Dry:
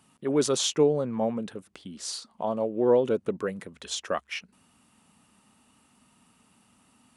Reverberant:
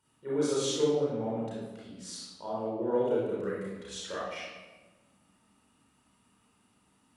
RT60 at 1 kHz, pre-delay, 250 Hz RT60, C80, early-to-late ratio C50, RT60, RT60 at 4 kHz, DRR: 1.2 s, 31 ms, 1.7 s, 2.0 dB, -2.5 dB, 1.3 s, 0.85 s, -7.5 dB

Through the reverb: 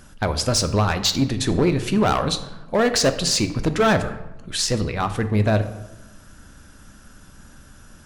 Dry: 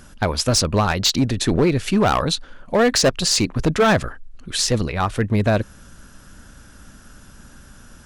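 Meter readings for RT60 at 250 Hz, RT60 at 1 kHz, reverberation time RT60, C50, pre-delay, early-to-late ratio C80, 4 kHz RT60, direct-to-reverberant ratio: 1.3 s, 1.0 s, 1.0 s, 11.5 dB, 3 ms, 14.0 dB, 0.65 s, 8.5 dB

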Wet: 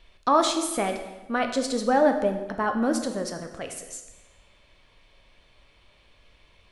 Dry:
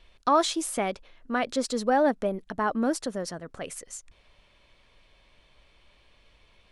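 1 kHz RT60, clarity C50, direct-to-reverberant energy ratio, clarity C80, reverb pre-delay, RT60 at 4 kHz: 1.1 s, 8.0 dB, 5.0 dB, 10.0 dB, 10 ms, 1.0 s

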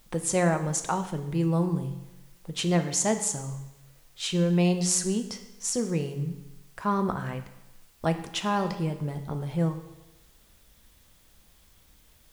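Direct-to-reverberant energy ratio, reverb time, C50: 7.0 dB, 1.0 s, 10.5 dB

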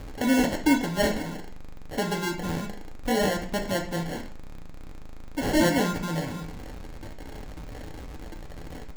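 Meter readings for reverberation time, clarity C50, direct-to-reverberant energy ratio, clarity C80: 0.45 s, 9.5 dB, 1.0 dB, 14.0 dB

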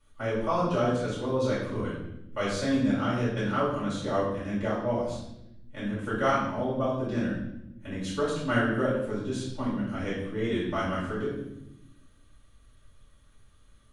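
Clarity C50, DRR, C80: 2.0 dB, -10.5 dB, 5.5 dB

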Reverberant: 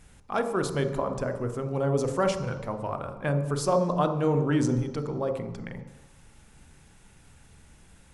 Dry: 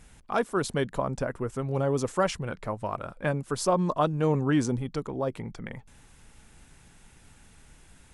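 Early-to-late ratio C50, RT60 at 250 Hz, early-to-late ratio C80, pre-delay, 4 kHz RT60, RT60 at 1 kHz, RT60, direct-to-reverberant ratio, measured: 8.5 dB, 1.0 s, 10.5 dB, 30 ms, 1.3 s, 1.2 s, 1.1 s, 6.5 dB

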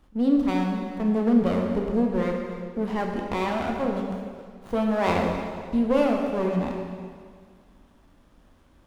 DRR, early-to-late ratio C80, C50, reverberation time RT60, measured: 1.0 dB, 4.0 dB, 3.0 dB, 1.9 s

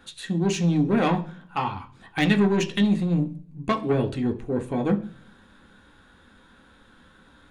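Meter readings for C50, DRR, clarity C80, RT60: 15.5 dB, 3.5 dB, 20.0 dB, 0.45 s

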